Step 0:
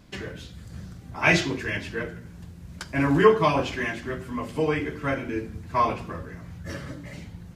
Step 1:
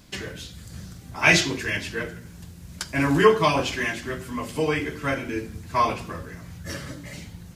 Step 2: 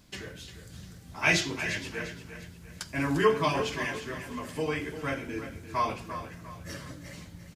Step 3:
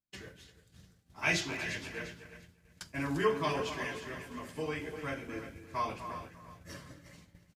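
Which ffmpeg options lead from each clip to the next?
ffmpeg -i in.wav -af "highshelf=frequency=3300:gain=11" out.wav
ffmpeg -i in.wav -af "aecho=1:1:349|698|1047|1396:0.282|0.104|0.0386|0.0143,volume=-7dB" out.wav
ffmpeg -i in.wav -filter_complex "[0:a]asplit=2[link_01][link_02];[link_02]adelay=250,highpass=300,lowpass=3400,asoftclip=type=hard:threshold=-19dB,volume=-10dB[link_03];[link_01][link_03]amix=inputs=2:normalize=0,agate=range=-33dB:threshold=-38dB:ratio=3:detection=peak,volume=-6dB" out.wav

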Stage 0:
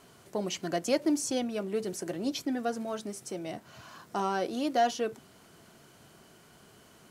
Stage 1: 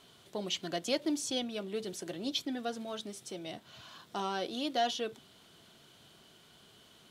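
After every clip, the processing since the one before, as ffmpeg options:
ffmpeg -i in.wav -af "equalizer=frequency=3500:width_type=o:width=0.64:gain=13.5,volume=-5.5dB" out.wav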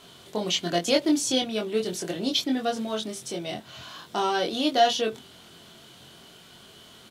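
ffmpeg -i in.wav -filter_complex "[0:a]asplit=2[link_01][link_02];[link_02]adelay=23,volume=-3dB[link_03];[link_01][link_03]amix=inputs=2:normalize=0,volume=8dB" out.wav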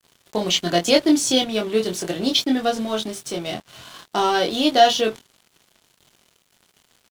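ffmpeg -i in.wav -af "aeval=exprs='sgn(val(0))*max(abs(val(0))-0.00562,0)':channel_layout=same,volume=6.5dB" out.wav

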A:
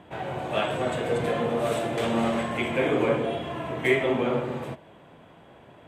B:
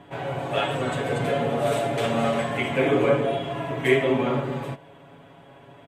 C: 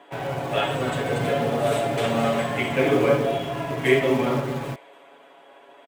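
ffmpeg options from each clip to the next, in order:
ffmpeg -i in.wav -af "aecho=1:1:7.2:0.85" out.wav
ffmpeg -i in.wav -filter_complex "[0:a]acrossover=split=310|1500[link_01][link_02][link_03];[link_01]acrusher=bits=6:mix=0:aa=0.000001[link_04];[link_03]aecho=1:1:291|582|873|1164:0.112|0.0516|0.0237|0.0109[link_05];[link_04][link_02][link_05]amix=inputs=3:normalize=0,volume=1dB" out.wav

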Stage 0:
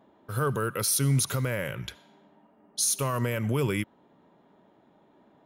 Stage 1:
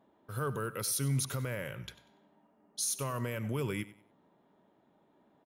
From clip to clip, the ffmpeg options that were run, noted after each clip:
ffmpeg -i in.wav -af "aecho=1:1:95|190|285:0.141|0.0396|0.0111,volume=-7.5dB" out.wav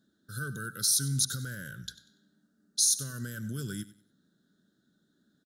ffmpeg -i in.wav -af "firequalizer=gain_entry='entry(120,0);entry(190,4);entry(410,-8);entry(960,-27);entry(1500,9);entry(2300,-25);entry(3700,12);entry(6600,12);entry(14000,4)':delay=0.05:min_phase=1,volume=-1.5dB" out.wav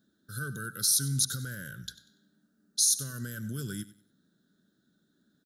ffmpeg -i in.wav -af "aexciter=amount=1.2:drive=4.3:freq=11000" out.wav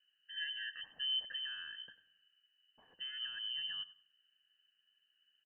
ffmpeg -i in.wav -af "lowpass=frequency=2700:width_type=q:width=0.5098,lowpass=frequency=2700:width_type=q:width=0.6013,lowpass=frequency=2700:width_type=q:width=0.9,lowpass=frequency=2700:width_type=q:width=2.563,afreqshift=-3200,volume=-5dB" out.wav

